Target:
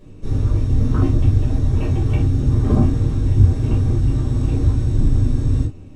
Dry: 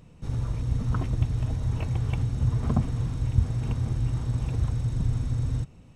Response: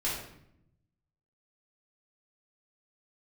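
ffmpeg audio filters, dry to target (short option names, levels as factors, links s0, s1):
-filter_complex "[0:a]equalizer=f=330:t=o:w=0.82:g=13[s0];[1:a]atrim=start_sample=2205,afade=t=out:st=0.19:d=0.01,atrim=end_sample=8820,asetrate=79380,aresample=44100[s1];[s0][s1]afir=irnorm=-1:irlink=0,volume=1.58"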